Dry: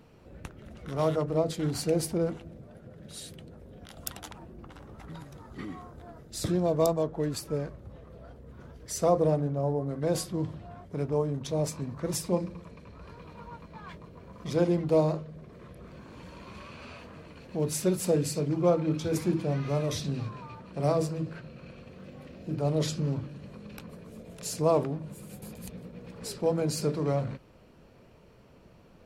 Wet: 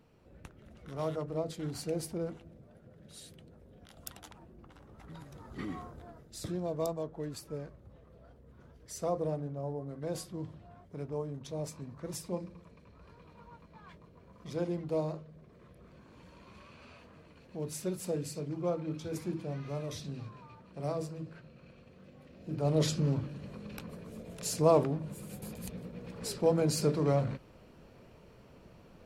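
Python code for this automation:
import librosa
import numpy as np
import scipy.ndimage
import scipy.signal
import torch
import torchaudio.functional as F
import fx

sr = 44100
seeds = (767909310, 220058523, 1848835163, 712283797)

y = fx.gain(x, sr, db=fx.line((4.87, -8.0), (5.77, 1.0), (6.43, -9.0), (22.28, -9.0), (22.78, 0.0)))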